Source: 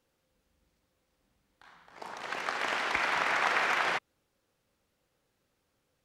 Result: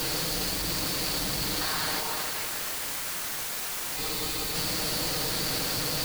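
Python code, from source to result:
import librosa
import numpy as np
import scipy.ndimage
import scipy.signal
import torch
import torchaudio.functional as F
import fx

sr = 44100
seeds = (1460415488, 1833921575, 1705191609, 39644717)

p1 = x + 0.5 * 10.0 ** (-37.5 / 20.0) * np.sign(x)
p2 = fx.peak_eq(p1, sr, hz=4500.0, db=14.0, octaves=0.35)
p3 = p2 + 0.77 * np.pad(p2, (int(6.5 * sr / 1000.0), 0))[:len(p2)]
p4 = fx.sample_hold(p3, sr, seeds[0], rate_hz=1400.0, jitter_pct=0)
p5 = p3 + (p4 * librosa.db_to_amplitude(-12.0))
p6 = fx.over_compress(p5, sr, threshold_db=-38.0, ratio=-1.0)
p7 = fx.quant_dither(p6, sr, seeds[1], bits=6, dither='triangular')
p8 = fx.spec_freeze(p7, sr, seeds[2], at_s=4.0, hold_s=0.54)
y = p8 * librosa.db_to_amplitude(2.5)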